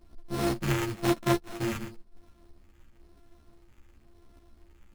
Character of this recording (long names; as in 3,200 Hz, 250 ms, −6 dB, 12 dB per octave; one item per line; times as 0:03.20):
a buzz of ramps at a fixed pitch in blocks of 128 samples
phaser sweep stages 2, 0.98 Hz, lowest notch 750–4,800 Hz
aliases and images of a low sample rate 4,700 Hz, jitter 0%
a shimmering, thickened sound